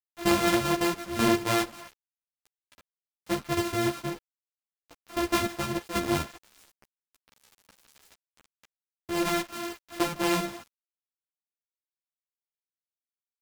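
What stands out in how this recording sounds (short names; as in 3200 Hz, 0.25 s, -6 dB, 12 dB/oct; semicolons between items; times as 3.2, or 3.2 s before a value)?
a buzz of ramps at a fixed pitch in blocks of 128 samples; tremolo saw down 0.84 Hz, depth 70%; a quantiser's noise floor 8-bit, dither none; a shimmering, thickened sound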